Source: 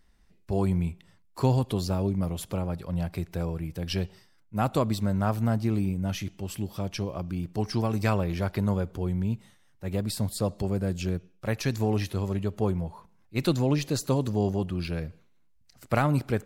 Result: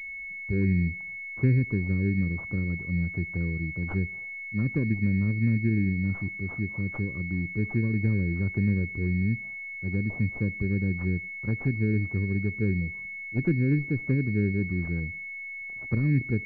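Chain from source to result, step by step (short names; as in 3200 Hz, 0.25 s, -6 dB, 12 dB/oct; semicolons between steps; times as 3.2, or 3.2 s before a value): treble ducked by the level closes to 620 Hz, closed at -21 dBFS; Butterworth band-stop 750 Hz, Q 0.6; pulse-width modulation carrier 2200 Hz; gain +2 dB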